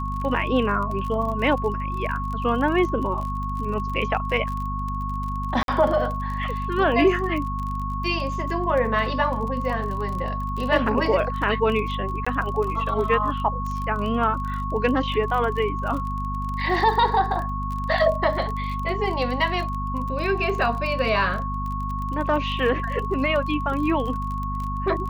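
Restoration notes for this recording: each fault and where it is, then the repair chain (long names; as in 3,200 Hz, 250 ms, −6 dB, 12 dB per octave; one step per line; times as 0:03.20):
surface crackle 30 per second −29 dBFS
mains hum 50 Hz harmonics 5 −29 dBFS
whistle 1,100 Hz −29 dBFS
0:05.63–0:05.68: drop-out 52 ms
0:12.25–0:12.27: drop-out 15 ms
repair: click removal
hum removal 50 Hz, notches 5
notch filter 1,100 Hz, Q 30
repair the gap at 0:05.63, 52 ms
repair the gap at 0:12.25, 15 ms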